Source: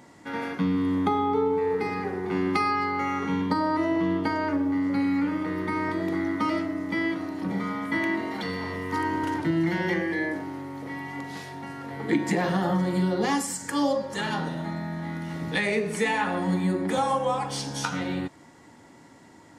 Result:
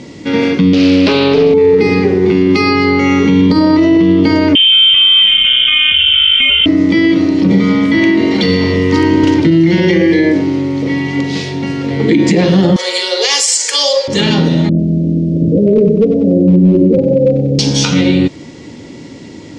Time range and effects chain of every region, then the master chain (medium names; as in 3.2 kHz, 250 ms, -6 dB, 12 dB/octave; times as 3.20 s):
0.73–1.54 s: frequency weighting D + loudspeaker Doppler distortion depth 0.5 ms
4.55–6.66 s: frequency inversion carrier 3.4 kHz + bass shelf 110 Hz +7.5 dB
12.76–14.08 s: elliptic high-pass 450 Hz, stop band 80 dB + tilt EQ +4 dB/octave
14.69–17.59 s: steep low-pass 630 Hz 72 dB/octave + hard clipper -20.5 dBFS + bit-crushed delay 94 ms, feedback 55%, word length 10-bit, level -12 dB
whole clip: low-pass 6.2 kHz 24 dB/octave; high-order bell 1.1 kHz -13 dB; loudness maximiser +23 dB; trim -1 dB